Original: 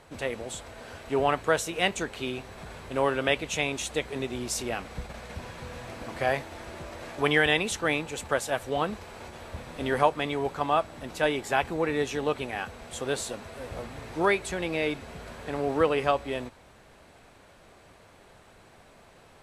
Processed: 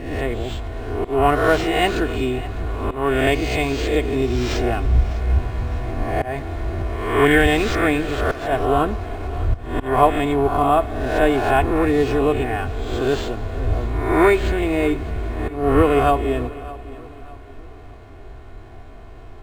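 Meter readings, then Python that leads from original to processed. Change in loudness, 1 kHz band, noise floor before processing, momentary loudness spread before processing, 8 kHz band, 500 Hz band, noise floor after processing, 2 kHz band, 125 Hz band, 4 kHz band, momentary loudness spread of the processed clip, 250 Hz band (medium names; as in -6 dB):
+8.5 dB, +9.0 dB, -55 dBFS, 16 LU, -2.5 dB, +9.0 dB, -39 dBFS, +6.0 dB, +15.0 dB, +3.5 dB, 11 LU, +12.0 dB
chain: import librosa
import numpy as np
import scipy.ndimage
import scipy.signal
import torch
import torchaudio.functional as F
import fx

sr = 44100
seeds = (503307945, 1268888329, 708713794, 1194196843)

y = fx.spec_swells(x, sr, rise_s=0.88)
y = fx.low_shelf(y, sr, hz=140.0, db=-2.5)
y = y + 0.67 * np.pad(y, (int(2.8 * sr / 1000.0), 0))[:len(y)]
y = fx.auto_swell(y, sr, attack_ms=220.0)
y = fx.sample_hold(y, sr, seeds[0], rate_hz=11000.0, jitter_pct=0)
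y = fx.riaa(y, sr, side='playback')
y = fx.echo_feedback(y, sr, ms=604, feedback_pct=37, wet_db=-18.5)
y = fx.rev_schroeder(y, sr, rt60_s=3.1, comb_ms=38, drr_db=17.5)
y = F.gain(torch.from_numpy(y), 3.5).numpy()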